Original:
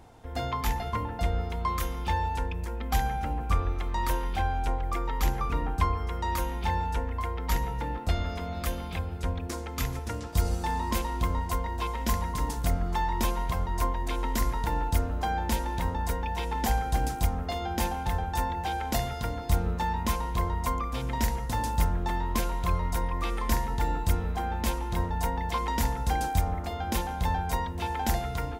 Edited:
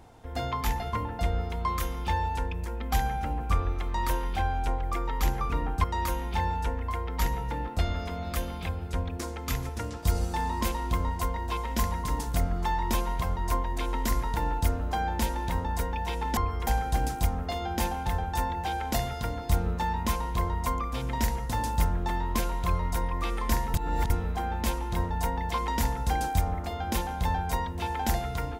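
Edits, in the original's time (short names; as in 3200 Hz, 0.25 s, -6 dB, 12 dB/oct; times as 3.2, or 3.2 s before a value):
5.84–6.14 move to 16.67
23.74–24.1 reverse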